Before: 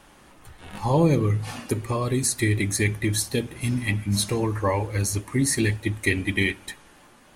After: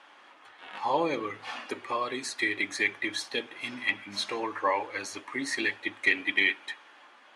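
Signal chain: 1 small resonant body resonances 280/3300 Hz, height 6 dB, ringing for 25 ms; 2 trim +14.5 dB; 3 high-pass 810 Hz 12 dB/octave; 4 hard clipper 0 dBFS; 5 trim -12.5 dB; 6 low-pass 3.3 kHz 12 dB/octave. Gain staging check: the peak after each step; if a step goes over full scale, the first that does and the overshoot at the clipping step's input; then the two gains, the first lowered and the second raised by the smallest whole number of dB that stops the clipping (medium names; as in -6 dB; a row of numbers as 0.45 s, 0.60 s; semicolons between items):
-7.0 dBFS, +7.5 dBFS, +5.0 dBFS, 0.0 dBFS, -12.5 dBFS, -12.0 dBFS; step 2, 5.0 dB; step 2 +9.5 dB, step 5 -7.5 dB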